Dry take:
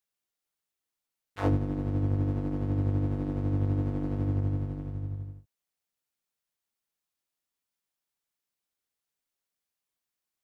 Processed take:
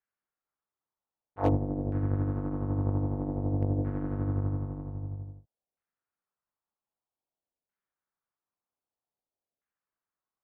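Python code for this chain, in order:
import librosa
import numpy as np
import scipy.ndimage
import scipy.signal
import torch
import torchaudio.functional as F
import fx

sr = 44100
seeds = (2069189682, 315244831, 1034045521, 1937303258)

y = fx.filter_lfo_lowpass(x, sr, shape='saw_down', hz=0.52, low_hz=620.0, high_hz=1700.0, q=1.9)
y = fx.cheby_harmonics(y, sr, harmonics=(3,), levels_db=(-23,), full_scale_db=-15.0)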